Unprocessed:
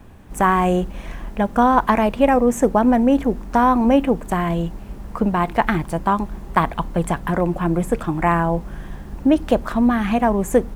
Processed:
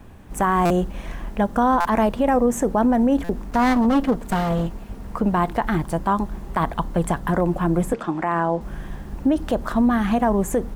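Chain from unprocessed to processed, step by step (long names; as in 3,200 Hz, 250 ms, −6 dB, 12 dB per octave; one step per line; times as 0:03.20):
0:03.51–0:05.07: lower of the sound and its delayed copy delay 4.3 ms
0:07.93–0:08.61: three-way crossover with the lows and the highs turned down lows −21 dB, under 180 Hz, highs −17 dB, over 7,200 Hz
brickwall limiter −10.5 dBFS, peak gain reduction 8 dB
dynamic equaliser 2,400 Hz, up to −7 dB, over −45 dBFS, Q 3
buffer that repeats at 0:00.65/0:01.80/0:03.24, samples 256, times 8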